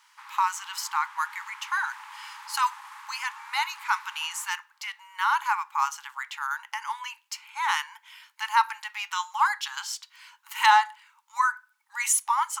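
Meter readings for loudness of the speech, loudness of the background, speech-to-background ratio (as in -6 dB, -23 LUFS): -27.5 LUFS, -44.5 LUFS, 17.0 dB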